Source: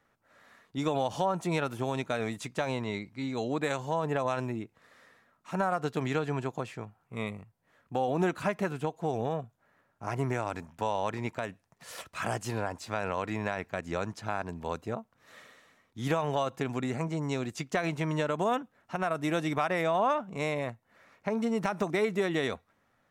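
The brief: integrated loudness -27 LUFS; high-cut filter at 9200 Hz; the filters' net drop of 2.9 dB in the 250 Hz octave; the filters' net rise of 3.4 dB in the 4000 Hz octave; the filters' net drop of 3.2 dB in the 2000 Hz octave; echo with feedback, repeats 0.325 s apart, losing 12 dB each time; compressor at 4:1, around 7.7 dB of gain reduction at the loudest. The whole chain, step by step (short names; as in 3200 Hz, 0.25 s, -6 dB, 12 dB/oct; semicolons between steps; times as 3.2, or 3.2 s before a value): LPF 9200 Hz; bell 250 Hz -4 dB; bell 2000 Hz -5.5 dB; bell 4000 Hz +6 dB; compressor 4:1, threshold -34 dBFS; feedback echo 0.325 s, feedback 25%, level -12 dB; gain +12 dB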